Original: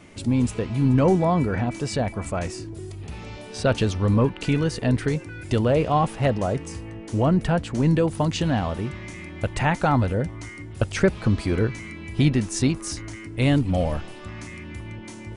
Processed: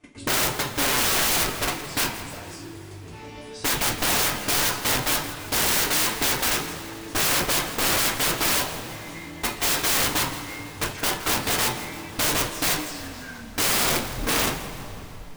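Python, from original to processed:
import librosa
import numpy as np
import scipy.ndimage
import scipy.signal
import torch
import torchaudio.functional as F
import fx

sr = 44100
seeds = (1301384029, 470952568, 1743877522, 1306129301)

p1 = fx.tape_stop_end(x, sr, length_s=2.79)
p2 = fx.low_shelf(p1, sr, hz=61.0, db=-7.5)
p3 = fx.level_steps(p2, sr, step_db=24)
p4 = (np.mod(10.0 ** (24.0 / 20.0) * p3 + 1.0, 2.0) - 1.0) / 10.0 ** (24.0 / 20.0)
p5 = fx.rev_double_slope(p4, sr, seeds[0], early_s=0.31, late_s=3.8, knee_db=-22, drr_db=-5.0)
p6 = (np.mod(10.0 ** (19.5 / 20.0) * p5 + 1.0, 2.0) - 1.0) / 10.0 ** (19.5 / 20.0)
p7 = p6 + fx.echo_feedback(p6, sr, ms=166, feedback_pct=50, wet_db=-15.5, dry=0)
y = p7 * 10.0 ** (3.0 / 20.0)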